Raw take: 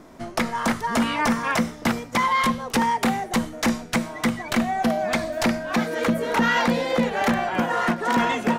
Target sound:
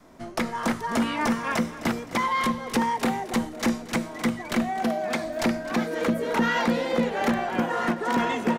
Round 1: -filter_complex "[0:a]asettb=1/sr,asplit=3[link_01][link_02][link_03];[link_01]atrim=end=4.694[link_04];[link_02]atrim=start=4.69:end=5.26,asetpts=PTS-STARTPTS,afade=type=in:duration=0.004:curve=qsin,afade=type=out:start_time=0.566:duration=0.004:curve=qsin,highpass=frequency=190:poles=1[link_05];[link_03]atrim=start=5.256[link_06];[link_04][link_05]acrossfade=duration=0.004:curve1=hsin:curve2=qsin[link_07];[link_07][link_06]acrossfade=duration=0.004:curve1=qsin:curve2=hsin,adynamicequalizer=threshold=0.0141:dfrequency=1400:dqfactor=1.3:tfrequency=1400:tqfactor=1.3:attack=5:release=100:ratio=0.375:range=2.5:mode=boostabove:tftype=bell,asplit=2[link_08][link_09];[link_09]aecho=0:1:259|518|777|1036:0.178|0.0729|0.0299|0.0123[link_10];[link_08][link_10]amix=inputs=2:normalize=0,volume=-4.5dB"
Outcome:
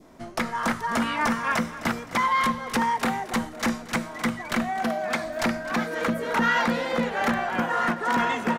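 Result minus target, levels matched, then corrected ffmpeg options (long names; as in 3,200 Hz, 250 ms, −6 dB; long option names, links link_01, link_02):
250 Hz band −3.0 dB
-filter_complex "[0:a]asettb=1/sr,asplit=3[link_01][link_02][link_03];[link_01]atrim=end=4.694[link_04];[link_02]atrim=start=4.69:end=5.26,asetpts=PTS-STARTPTS,afade=type=in:duration=0.004:curve=qsin,afade=type=out:start_time=0.566:duration=0.004:curve=qsin,highpass=frequency=190:poles=1[link_05];[link_03]atrim=start=5.256[link_06];[link_04][link_05]acrossfade=duration=0.004:curve1=hsin:curve2=qsin[link_07];[link_07][link_06]acrossfade=duration=0.004:curve1=qsin:curve2=hsin,adynamicequalizer=threshold=0.0141:dfrequency=350:dqfactor=1.3:tfrequency=350:tqfactor=1.3:attack=5:release=100:ratio=0.375:range=2.5:mode=boostabove:tftype=bell,asplit=2[link_08][link_09];[link_09]aecho=0:1:259|518|777|1036:0.178|0.0729|0.0299|0.0123[link_10];[link_08][link_10]amix=inputs=2:normalize=0,volume=-4.5dB"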